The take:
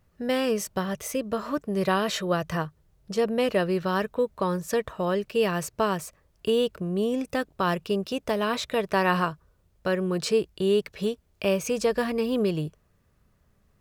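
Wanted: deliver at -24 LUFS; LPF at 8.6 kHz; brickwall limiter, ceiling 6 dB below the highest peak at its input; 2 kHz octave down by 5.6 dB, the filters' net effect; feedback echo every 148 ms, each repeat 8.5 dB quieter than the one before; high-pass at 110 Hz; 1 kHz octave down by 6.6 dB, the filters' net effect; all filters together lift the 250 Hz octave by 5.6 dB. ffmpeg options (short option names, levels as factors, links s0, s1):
-af "highpass=110,lowpass=8600,equalizer=f=250:t=o:g=8,equalizer=f=1000:t=o:g=-8,equalizer=f=2000:t=o:g=-4.5,alimiter=limit=0.141:level=0:latency=1,aecho=1:1:148|296|444|592:0.376|0.143|0.0543|0.0206,volume=1.33"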